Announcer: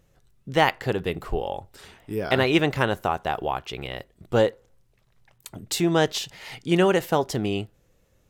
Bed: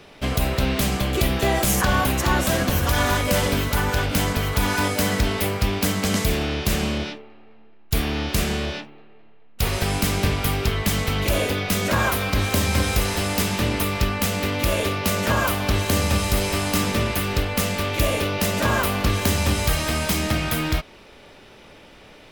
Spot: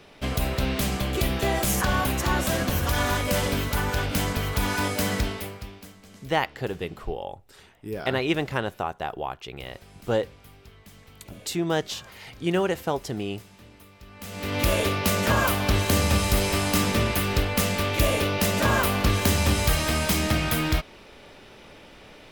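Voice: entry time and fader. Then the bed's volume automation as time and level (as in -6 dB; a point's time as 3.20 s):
5.75 s, -4.5 dB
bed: 5.19 s -4 dB
6.00 s -27.5 dB
14.01 s -27.5 dB
14.58 s -1 dB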